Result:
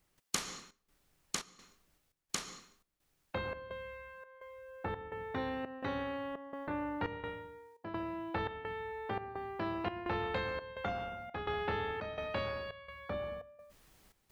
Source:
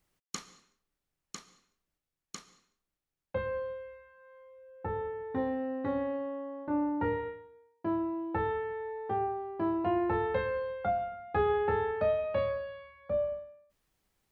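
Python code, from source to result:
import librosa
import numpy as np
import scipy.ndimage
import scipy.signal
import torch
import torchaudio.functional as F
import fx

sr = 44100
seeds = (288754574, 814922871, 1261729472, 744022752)

y = fx.step_gate(x, sr, bpm=85, pattern='.xxx.xxx', floor_db=-12.0, edge_ms=4.5)
y = fx.spectral_comp(y, sr, ratio=2.0)
y = F.gain(torch.from_numpy(y), 1.5).numpy()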